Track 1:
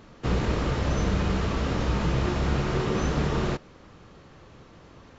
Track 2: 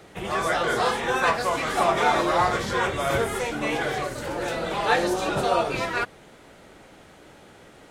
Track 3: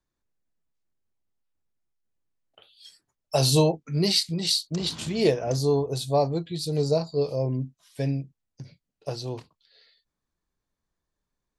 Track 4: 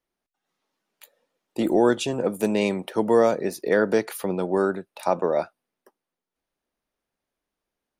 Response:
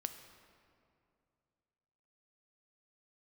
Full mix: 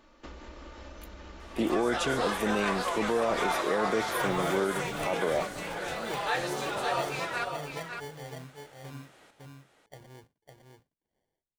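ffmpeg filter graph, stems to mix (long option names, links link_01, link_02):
-filter_complex "[0:a]equalizer=frequency=130:width_type=o:width=1.4:gain=-14.5,aecho=1:1:3.4:0.5,acompressor=threshold=-34dB:ratio=12,volume=-8dB[link_01];[1:a]lowshelf=frequency=370:gain=-12,adelay=1400,volume=-5.5dB,asplit=2[link_02][link_03];[link_03]volume=-6.5dB[link_04];[2:a]acrusher=samples=34:mix=1:aa=0.000001,adelay=850,volume=-18dB,asplit=2[link_05][link_06];[link_06]volume=-4.5dB[link_07];[3:a]volume=-4.5dB[link_08];[link_04][link_07]amix=inputs=2:normalize=0,aecho=0:1:556:1[link_09];[link_01][link_02][link_05][link_08][link_09]amix=inputs=5:normalize=0,alimiter=limit=-18.5dB:level=0:latency=1:release=11"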